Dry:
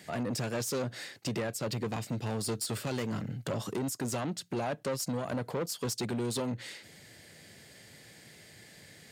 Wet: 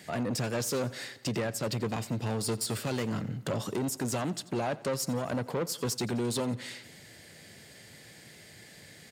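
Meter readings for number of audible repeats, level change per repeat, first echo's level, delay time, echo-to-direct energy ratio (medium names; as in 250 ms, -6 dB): 4, -4.5 dB, -19.5 dB, 88 ms, -17.5 dB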